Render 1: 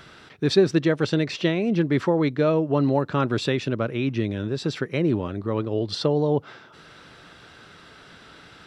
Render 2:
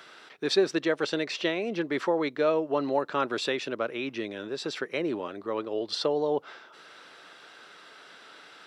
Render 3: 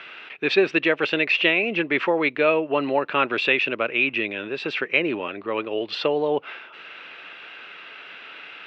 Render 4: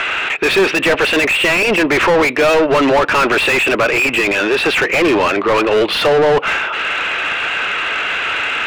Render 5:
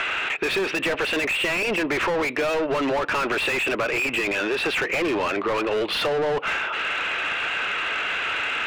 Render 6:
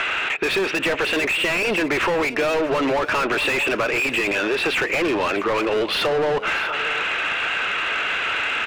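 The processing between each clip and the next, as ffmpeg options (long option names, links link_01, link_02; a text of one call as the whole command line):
ffmpeg -i in.wav -af "highpass=420,volume=-1.5dB" out.wav
ffmpeg -i in.wav -af "lowpass=frequency=2600:width_type=q:width=5.6,volume=4dB" out.wav
ffmpeg -i in.wav -filter_complex "[0:a]asplit=2[link_01][link_02];[link_02]highpass=frequency=720:poles=1,volume=35dB,asoftclip=type=tanh:threshold=-4dB[link_03];[link_01][link_03]amix=inputs=2:normalize=0,lowpass=frequency=1900:poles=1,volume=-6dB" out.wav
ffmpeg -i in.wav -af "acompressor=threshold=-15dB:ratio=6,volume=-6.5dB" out.wav
ffmpeg -i in.wav -af "aecho=1:1:639:0.178,volume=2.5dB" out.wav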